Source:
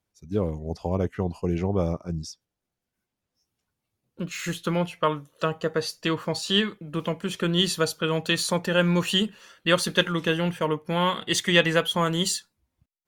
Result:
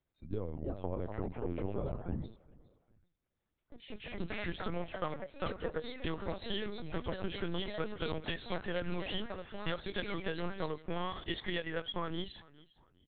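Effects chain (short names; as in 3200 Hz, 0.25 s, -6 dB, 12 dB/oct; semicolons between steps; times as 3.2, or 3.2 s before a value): bell 2800 Hz -4.5 dB 0.39 oct; notch 800 Hz, Q 12; compressor 16:1, threshold -29 dBFS, peak gain reduction 16 dB; echoes that change speed 0.379 s, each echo +3 st, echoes 2, each echo -6 dB; frequency-shifting echo 0.407 s, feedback 35%, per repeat -33 Hz, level -22 dB; LPC vocoder at 8 kHz pitch kept; gain -3.5 dB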